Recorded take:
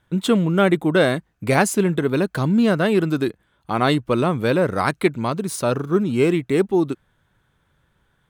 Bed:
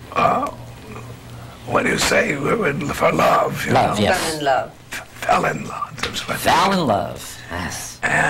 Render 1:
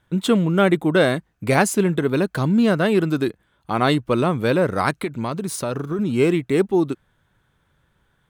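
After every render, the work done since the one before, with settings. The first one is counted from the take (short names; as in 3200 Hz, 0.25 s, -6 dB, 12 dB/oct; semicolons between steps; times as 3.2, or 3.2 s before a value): 4.94–5.99 compressor, threshold -20 dBFS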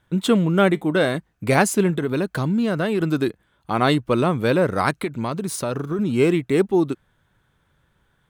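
0.72–1.15 resonator 100 Hz, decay 0.17 s, mix 40%; 1.9–3.01 compressor 2.5:1, threshold -19 dBFS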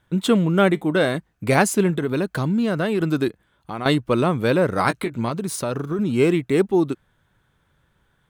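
3.28–3.86 compressor 2:1, threshold -32 dBFS; 4.75–5.31 doubler 17 ms -8.5 dB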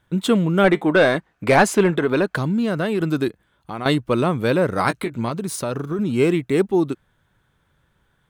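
0.64–2.36 overdrive pedal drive 16 dB, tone 2000 Hz, clips at -2 dBFS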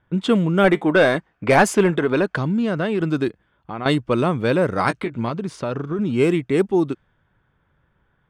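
low-pass opened by the level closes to 2300 Hz, open at -11.5 dBFS; notch 4000 Hz, Q 12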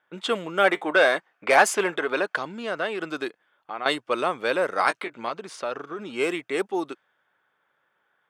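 HPF 600 Hz 12 dB/oct; notch 980 Hz, Q 18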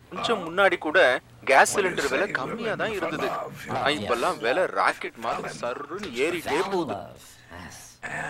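add bed -15 dB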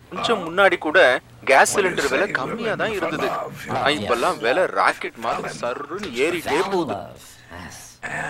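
gain +4.5 dB; limiter -2 dBFS, peak gain reduction 2.5 dB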